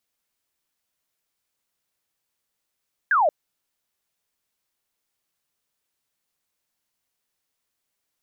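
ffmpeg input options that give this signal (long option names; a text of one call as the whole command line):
ffmpeg -f lavfi -i "aevalsrc='0.168*clip(t/0.002,0,1)*clip((0.18-t)/0.002,0,1)*sin(2*PI*1700*0.18/log(560/1700)*(exp(log(560/1700)*t/0.18)-1))':duration=0.18:sample_rate=44100" out.wav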